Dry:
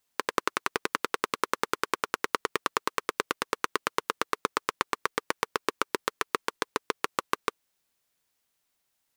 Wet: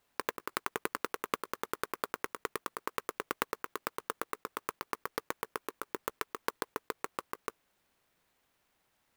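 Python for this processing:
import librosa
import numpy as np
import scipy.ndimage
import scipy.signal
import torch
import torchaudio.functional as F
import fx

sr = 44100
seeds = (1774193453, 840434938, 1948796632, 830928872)

y = fx.lowpass(x, sr, hz=2700.0, slope=6)
y = fx.over_compress(y, sr, threshold_db=-33.0, ratio=-0.5)
y = fx.clock_jitter(y, sr, seeds[0], jitter_ms=0.044)
y = F.gain(torch.from_numpy(y), 1.0).numpy()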